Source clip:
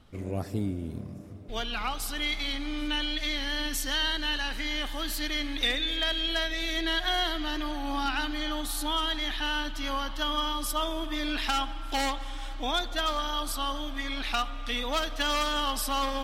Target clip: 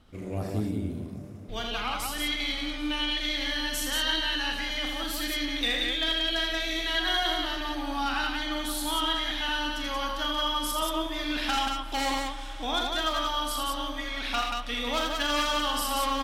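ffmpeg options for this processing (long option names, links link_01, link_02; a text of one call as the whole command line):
ffmpeg -i in.wav -filter_complex "[0:a]bandreject=frequency=60:width_type=h:width=6,bandreject=frequency=120:width_type=h:width=6,asplit=2[link_01][link_02];[link_02]aecho=0:1:37.9|81.63|180.8:0.447|0.562|0.708[link_03];[link_01][link_03]amix=inputs=2:normalize=0,volume=-1.5dB" out.wav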